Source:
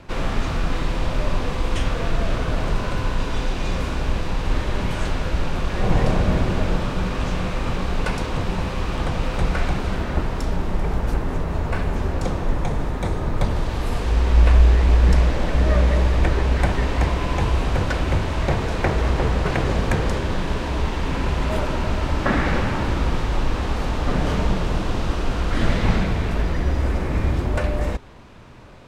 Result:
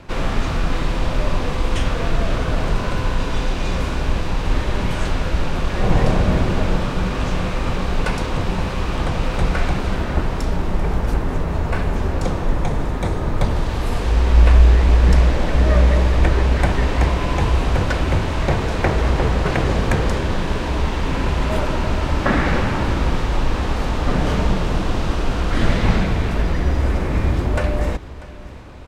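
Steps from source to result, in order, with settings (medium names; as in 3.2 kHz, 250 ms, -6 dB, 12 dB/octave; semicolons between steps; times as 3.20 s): feedback delay 642 ms, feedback 56%, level -19 dB; trim +2.5 dB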